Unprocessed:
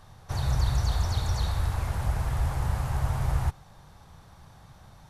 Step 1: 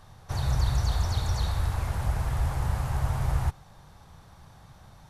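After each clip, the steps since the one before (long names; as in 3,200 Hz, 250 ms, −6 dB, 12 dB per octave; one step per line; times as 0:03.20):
no processing that can be heard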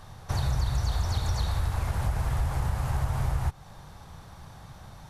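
downward compressor 3 to 1, threshold −30 dBFS, peak gain reduction 8.5 dB
level +5 dB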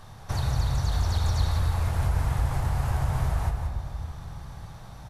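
single-tap delay 177 ms −8 dB
on a send at −6.5 dB: convolution reverb RT60 3.3 s, pre-delay 4 ms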